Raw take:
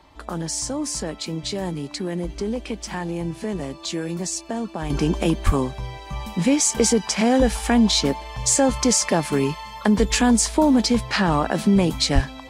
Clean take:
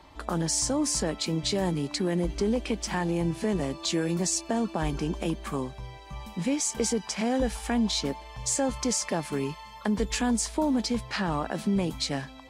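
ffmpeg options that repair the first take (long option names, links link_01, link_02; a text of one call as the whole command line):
ffmpeg -i in.wav -filter_complex "[0:a]asplit=3[link_01][link_02][link_03];[link_01]afade=type=out:start_time=5.45:duration=0.02[link_04];[link_02]highpass=frequency=140:width=0.5412,highpass=frequency=140:width=1.3066,afade=type=in:start_time=5.45:duration=0.02,afade=type=out:start_time=5.57:duration=0.02[link_05];[link_03]afade=type=in:start_time=5.57:duration=0.02[link_06];[link_04][link_05][link_06]amix=inputs=3:normalize=0,asplit=3[link_07][link_08][link_09];[link_07]afade=type=out:start_time=12.14:duration=0.02[link_10];[link_08]highpass=frequency=140:width=0.5412,highpass=frequency=140:width=1.3066,afade=type=in:start_time=12.14:duration=0.02,afade=type=out:start_time=12.26:duration=0.02[link_11];[link_09]afade=type=in:start_time=12.26:duration=0.02[link_12];[link_10][link_11][link_12]amix=inputs=3:normalize=0,asetnsamples=nb_out_samples=441:pad=0,asendcmd='4.9 volume volume -9dB',volume=0dB" out.wav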